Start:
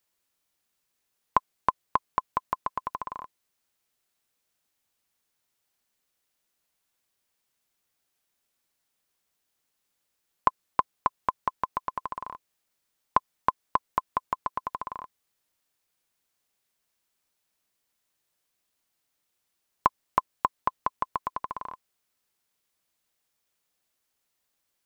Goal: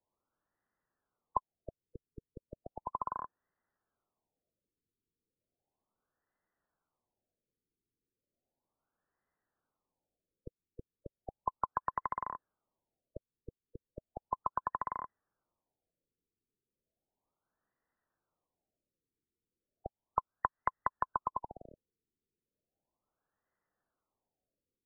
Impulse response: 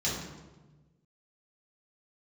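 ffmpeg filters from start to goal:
-filter_complex "[0:a]acrossover=split=190|810[link_01][link_02][link_03];[link_01]acompressor=threshold=-45dB:ratio=4[link_04];[link_02]acompressor=threshold=-43dB:ratio=4[link_05];[link_03]acompressor=threshold=-29dB:ratio=4[link_06];[link_04][link_05][link_06]amix=inputs=3:normalize=0,afftfilt=real='re*lt(b*sr/1024,470*pow(2100/470,0.5+0.5*sin(2*PI*0.35*pts/sr)))':imag='im*lt(b*sr/1024,470*pow(2100/470,0.5+0.5*sin(2*PI*0.35*pts/sr)))':win_size=1024:overlap=0.75"

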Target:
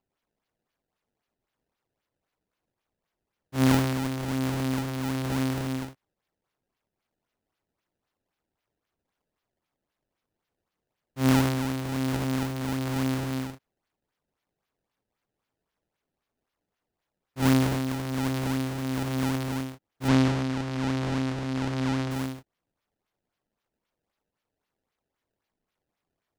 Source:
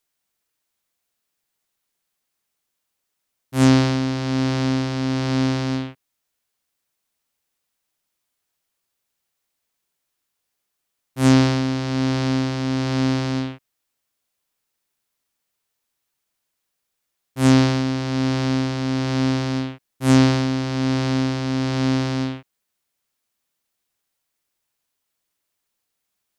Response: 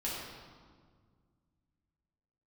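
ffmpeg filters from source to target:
-filter_complex "[0:a]acrusher=samples=23:mix=1:aa=0.000001:lfo=1:lforange=36.8:lforate=3.8,asettb=1/sr,asplit=3[link_01][link_02][link_03];[link_01]atrim=end=20.084[link_04];[link_02]atrim=start=20.08:end=22.11,asetpts=PTS-STARTPTS,afade=type=in:duration=0.004:curve=qsin,afade=type=out:start_time=2.026:duration=0.004:curve=qsin,lowpass=6100[link_05];[link_03]atrim=start=22.106[link_06];[link_04][link_05]acrossfade=duration=0.004:curve1=hsin:curve2=qsin[link_07];[link_07][link_06]acrossfade=duration=0.004:curve1=qsin:curve2=hsin,volume=-7dB"

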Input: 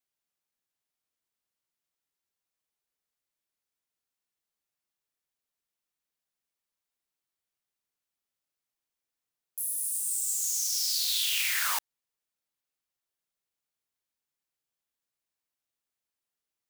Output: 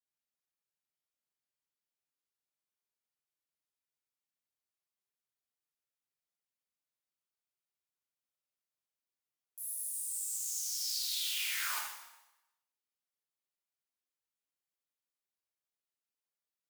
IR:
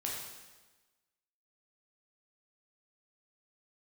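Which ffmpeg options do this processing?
-filter_complex "[0:a]asetnsamples=nb_out_samples=441:pad=0,asendcmd='9.74 highpass f 170',highpass=61[link_01];[1:a]atrim=start_sample=2205,asetrate=57330,aresample=44100[link_02];[link_01][link_02]afir=irnorm=-1:irlink=0,volume=-7dB"

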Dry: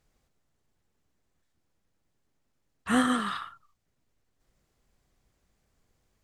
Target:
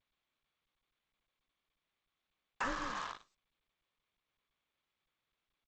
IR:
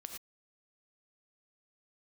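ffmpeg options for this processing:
-filter_complex "[0:a]agate=range=-11dB:threshold=-59dB:ratio=16:detection=peak,aecho=1:1:133|266|399:0.0891|0.0303|0.0103,highpass=frequency=340:width_type=q:width=0.5412,highpass=frequency=340:width_type=q:width=1.307,lowpass=frequency=2600:width_type=q:width=0.5176,lowpass=frequency=2600:width_type=q:width=0.7071,lowpass=frequency=2600:width_type=q:width=1.932,afreqshift=-230,acompressor=threshold=-42dB:ratio=20,adynamicequalizer=threshold=0.00112:dfrequency=980:dqfactor=1.6:tfrequency=980:tqfactor=1.6:attack=5:release=100:ratio=0.375:range=2.5:mode=cutabove:tftype=bell,asetrate=48510,aresample=44100,acrusher=bits=7:mix=0:aa=0.5,asplit=2[link_01][link_02];[link_02]tiltshelf=frequency=700:gain=4[link_03];[1:a]atrim=start_sample=2205,asetrate=43659,aresample=44100,highshelf=frequency=5900:gain=10[link_04];[link_03][link_04]afir=irnorm=-1:irlink=0,volume=-14dB[link_05];[link_01][link_05]amix=inputs=2:normalize=0,volume=7dB" -ar 16000 -c:a g722

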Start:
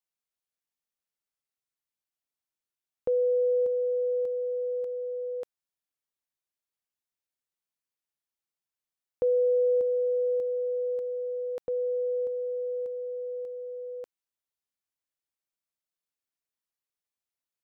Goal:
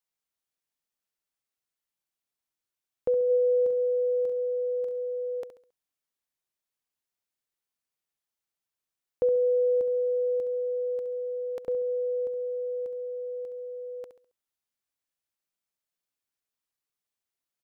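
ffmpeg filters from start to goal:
ffmpeg -i in.wav -filter_complex "[0:a]asplit=3[link_01][link_02][link_03];[link_01]afade=type=out:start_time=3.29:duration=0.02[link_04];[link_02]asplit=2[link_05][link_06];[link_06]adelay=42,volume=-6dB[link_07];[link_05][link_07]amix=inputs=2:normalize=0,afade=type=in:start_time=3.29:duration=0.02,afade=type=out:start_time=5.4:duration=0.02[link_08];[link_03]afade=type=in:start_time=5.4:duration=0.02[link_09];[link_04][link_08][link_09]amix=inputs=3:normalize=0,aecho=1:1:68|136|204|272:0.282|0.101|0.0365|0.0131,volume=1.5dB" out.wav

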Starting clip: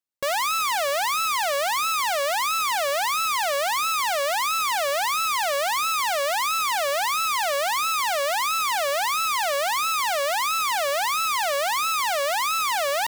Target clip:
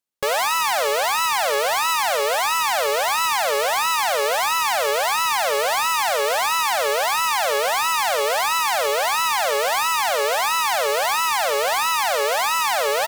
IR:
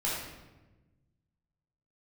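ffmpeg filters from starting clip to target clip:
-filter_complex "[0:a]bandreject=frequency=207.5:width_type=h:width=4,bandreject=frequency=415:width_type=h:width=4,bandreject=frequency=622.5:width_type=h:width=4,bandreject=frequency=830:width_type=h:width=4,bandreject=frequency=1037.5:width_type=h:width=4,bandreject=frequency=1245:width_type=h:width=4,bandreject=frequency=1452.5:width_type=h:width=4,bandreject=frequency=1660:width_type=h:width=4,bandreject=frequency=1867.5:width_type=h:width=4,bandreject=frequency=2075:width_type=h:width=4,bandreject=frequency=2282.5:width_type=h:width=4,bandreject=frequency=2490:width_type=h:width=4,bandreject=frequency=2697.5:width_type=h:width=4,bandreject=frequency=2905:width_type=h:width=4,bandreject=frequency=3112.5:width_type=h:width=4,bandreject=frequency=3320:width_type=h:width=4,bandreject=frequency=3527.5:width_type=h:width=4,bandreject=frequency=3735:width_type=h:width=4,bandreject=frequency=3942.5:width_type=h:width=4,bandreject=frequency=4150:width_type=h:width=4,bandreject=frequency=4357.5:width_type=h:width=4,bandreject=frequency=4565:width_type=h:width=4,bandreject=frequency=4772.5:width_type=h:width=4,bandreject=frequency=4980:width_type=h:width=4,bandreject=frequency=5187.5:width_type=h:width=4,bandreject=frequency=5395:width_type=h:width=4,bandreject=frequency=5602.5:width_type=h:width=4,bandreject=frequency=5810:width_type=h:width=4,bandreject=frequency=6017.5:width_type=h:width=4,asplit=2[link_01][link_02];[link_02]asetrate=33038,aresample=44100,atempo=1.33484,volume=-1dB[link_03];[link_01][link_03]amix=inputs=2:normalize=0,volume=1dB"

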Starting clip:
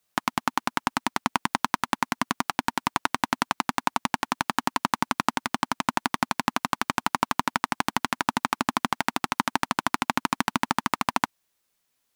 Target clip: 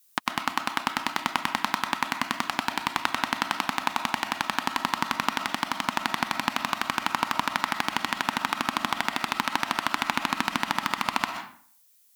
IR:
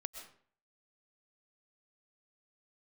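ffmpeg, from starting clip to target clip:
-filter_complex "[0:a]acrossover=split=4100[link_01][link_02];[link_02]acompressor=threshold=-46dB:ratio=4:attack=1:release=60[link_03];[link_01][link_03]amix=inputs=2:normalize=0,crystalizer=i=5.5:c=0[link_04];[1:a]atrim=start_sample=2205[link_05];[link_04][link_05]afir=irnorm=-1:irlink=0,volume=-1.5dB"

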